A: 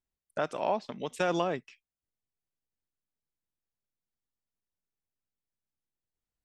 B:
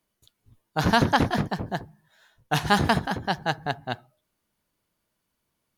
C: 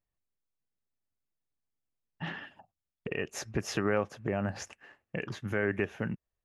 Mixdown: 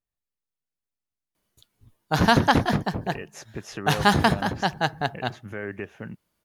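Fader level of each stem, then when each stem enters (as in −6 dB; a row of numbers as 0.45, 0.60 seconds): muted, +2.0 dB, −3.5 dB; muted, 1.35 s, 0.00 s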